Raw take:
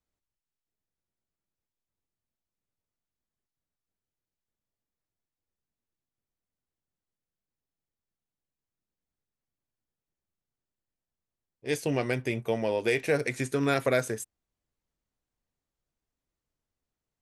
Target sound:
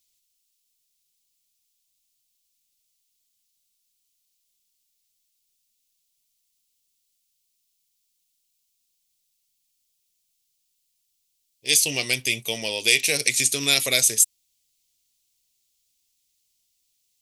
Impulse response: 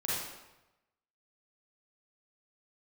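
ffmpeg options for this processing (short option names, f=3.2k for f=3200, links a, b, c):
-af "aexciter=amount=15.9:drive=5.2:freq=2.4k,volume=-4.5dB"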